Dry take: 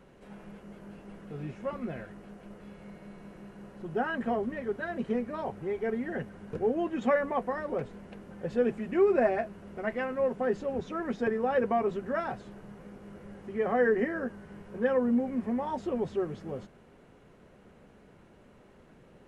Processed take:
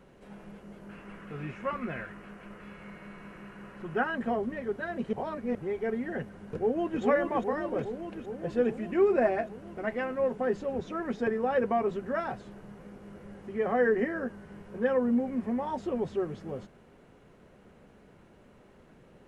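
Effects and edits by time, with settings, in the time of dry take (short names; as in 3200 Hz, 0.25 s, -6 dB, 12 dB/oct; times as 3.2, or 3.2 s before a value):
0.89–4.04 band shelf 1700 Hz +8.5 dB
5.13–5.55 reverse
6.34–7.02 echo throw 0.41 s, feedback 75%, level -4.5 dB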